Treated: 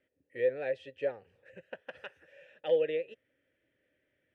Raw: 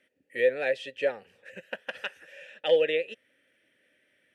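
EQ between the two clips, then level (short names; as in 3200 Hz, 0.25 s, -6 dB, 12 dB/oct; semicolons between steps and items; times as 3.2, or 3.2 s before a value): tilt -3.5 dB/oct; bell 210 Hz -9.5 dB 0.52 oct; -8.0 dB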